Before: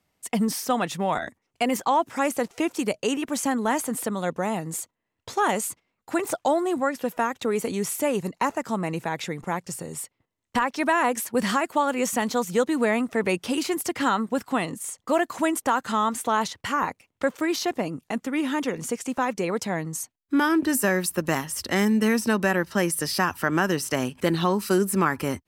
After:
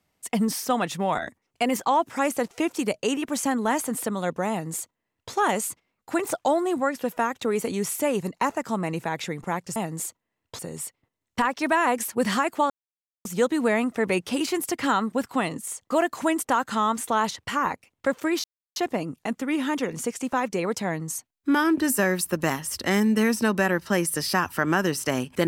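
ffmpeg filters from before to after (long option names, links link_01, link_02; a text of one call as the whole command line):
ffmpeg -i in.wav -filter_complex "[0:a]asplit=6[link_01][link_02][link_03][link_04][link_05][link_06];[link_01]atrim=end=9.762[link_07];[link_02]atrim=start=4.498:end=5.332[link_08];[link_03]atrim=start=9.758:end=11.87,asetpts=PTS-STARTPTS,afade=type=out:start_time=2.108:duration=0.004:curve=hsin[link_09];[link_04]atrim=start=11.87:end=12.42,asetpts=PTS-STARTPTS,volume=0[link_10];[link_05]atrim=start=12.42:end=17.61,asetpts=PTS-STARTPTS,afade=type=in:duration=0.004:curve=hsin,afade=type=out:start_time=5.186:duration=0.004:curve=hsin,apad=pad_dur=0.32[link_11];[link_06]atrim=start=17.61,asetpts=PTS-STARTPTS,afade=type=in:duration=0.004:curve=hsin[link_12];[link_07][link_08]acrossfade=duration=0.004:curve1=hsin:curve2=hsin[link_13];[link_09][link_10][link_11][link_12]concat=n=4:v=0:a=1[link_14];[link_13][link_14]acrossfade=duration=0.004:curve1=hsin:curve2=hsin" out.wav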